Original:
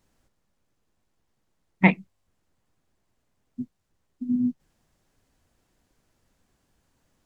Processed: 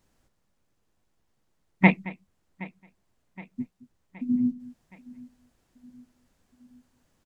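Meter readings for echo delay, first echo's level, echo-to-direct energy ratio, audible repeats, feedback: 0.221 s, -19.5 dB, -16.5 dB, 4, no steady repeat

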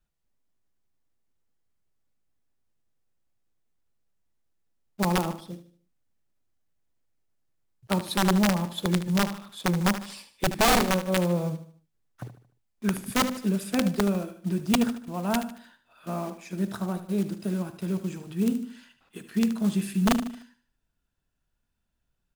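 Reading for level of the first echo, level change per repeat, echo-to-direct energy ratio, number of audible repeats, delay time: -12.0 dB, -8.0 dB, -11.5 dB, 3, 75 ms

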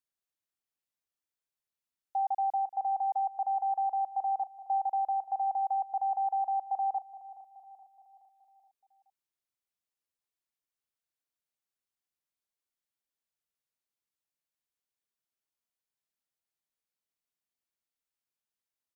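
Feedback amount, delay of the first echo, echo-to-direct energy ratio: 52%, 0.423 s, -15.0 dB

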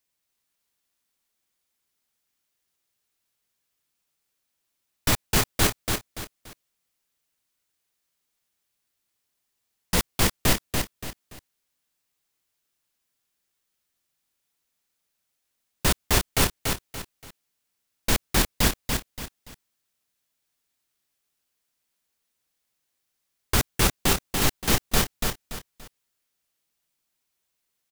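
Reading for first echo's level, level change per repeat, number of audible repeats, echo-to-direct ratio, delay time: -4.5 dB, -9.5 dB, 3, -4.0 dB, 0.287 s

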